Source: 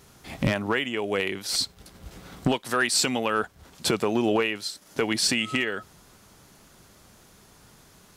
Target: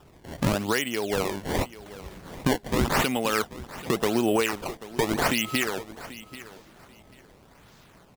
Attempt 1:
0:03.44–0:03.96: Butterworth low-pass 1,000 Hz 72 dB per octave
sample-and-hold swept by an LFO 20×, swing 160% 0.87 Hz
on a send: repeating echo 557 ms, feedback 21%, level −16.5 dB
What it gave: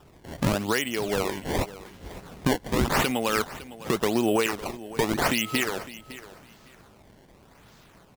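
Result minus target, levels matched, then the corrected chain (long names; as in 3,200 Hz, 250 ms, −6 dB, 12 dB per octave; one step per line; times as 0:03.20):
echo 230 ms early
0:03.44–0:03.96: Butterworth low-pass 1,000 Hz 72 dB per octave
sample-and-hold swept by an LFO 20×, swing 160% 0.87 Hz
on a send: repeating echo 787 ms, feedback 21%, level −16.5 dB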